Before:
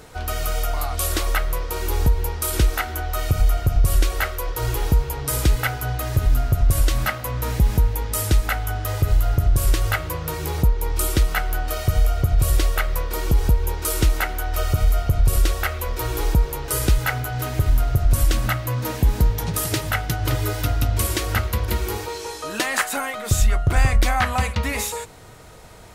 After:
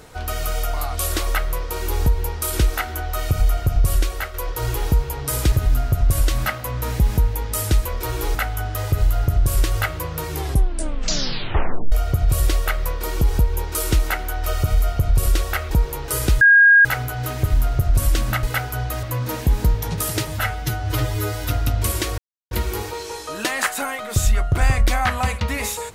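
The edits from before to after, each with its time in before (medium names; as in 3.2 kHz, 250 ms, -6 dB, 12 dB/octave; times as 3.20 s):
3.89–4.34 s: fade out, to -6.5 dB
5.52–6.12 s: move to 18.59 s
10.40 s: tape stop 1.62 s
15.81–16.31 s: move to 8.45 s
17.01 s: add tone 1.63 kHz -7.5 dBFS 0.44 s
19.83–20.65 s: stretch 1.5×
21.33–21.66 s: mute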